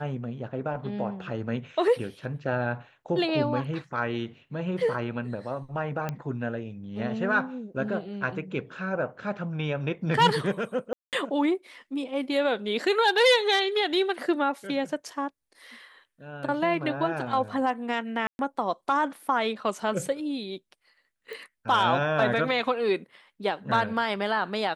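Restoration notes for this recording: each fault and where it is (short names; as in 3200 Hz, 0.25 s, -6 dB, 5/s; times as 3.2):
6.09 pop -17 dBFS
10.93–11.13 gap 0.198 s
18.27–18.39 gap 0.121 s
21.33 pop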